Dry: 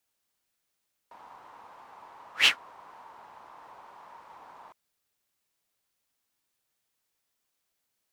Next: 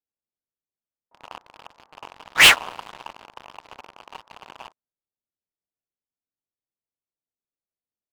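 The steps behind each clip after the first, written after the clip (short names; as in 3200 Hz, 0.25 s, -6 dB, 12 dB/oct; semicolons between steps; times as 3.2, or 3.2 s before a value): low-pass opened by the level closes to 550 Hz, open at -35.5 dBFS; dynamic EQ 730 Hz, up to +6 dB, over -51 dBFS, Q 1.2; sample leveller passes 5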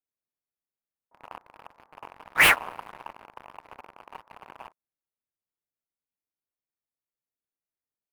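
band shelf 4800 Hz -11 dB; gain -2.5 dB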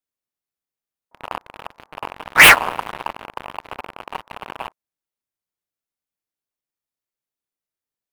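sample leveller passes 2; gain +6.5 dB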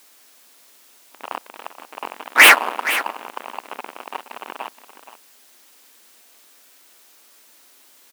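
echo 0.472 s -13 dB; added noise white -51 dBFS; brick-wall FIR high-pass 210 Hz; gain -1 dB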